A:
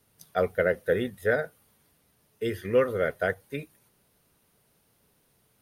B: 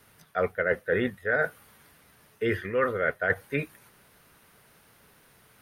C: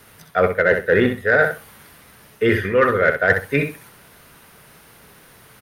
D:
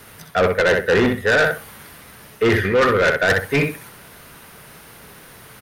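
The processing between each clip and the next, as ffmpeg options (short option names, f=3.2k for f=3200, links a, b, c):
-filter_complex "[0:a]acrossover=split=3100[a][b];[b]acompressor=threshold=-58dB:ratio=4:attack=1:release=60[c];[a][c]amix=inputs=2:normalize=0,equalizer=f=1.6k:w=0.8:g=9,areverse,acompressor=threshold=-29dB:ratio=8,areverse,volume=6.5dB"
-filter_complex "[0:a]asplit=2[a][b];[b]asoftclip=type=tanh:threshold=-20dB,volume=-5.5dB[c];[a][c]amix=inputs=2:normalize=0,aecho=1:1:64|128|192:0.422|0.0759|0.0137,volume=6.5dB"
-af "asoftclip=type=tanh:threshold=-16.5dB,volume=5dB"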